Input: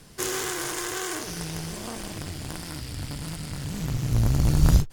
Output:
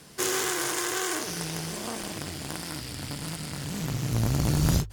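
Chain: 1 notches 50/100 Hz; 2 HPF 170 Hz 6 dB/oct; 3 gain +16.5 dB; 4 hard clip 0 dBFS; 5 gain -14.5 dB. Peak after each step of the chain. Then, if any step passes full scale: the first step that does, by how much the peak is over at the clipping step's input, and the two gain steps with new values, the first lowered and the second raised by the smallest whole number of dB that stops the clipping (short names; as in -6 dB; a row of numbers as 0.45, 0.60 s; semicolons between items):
-7.0, -8.5, +8.0, 0.0, -14.5 dBFS; step 3, 8.0 dB; step 3 +8.5 dB, step 5 -6.5 dB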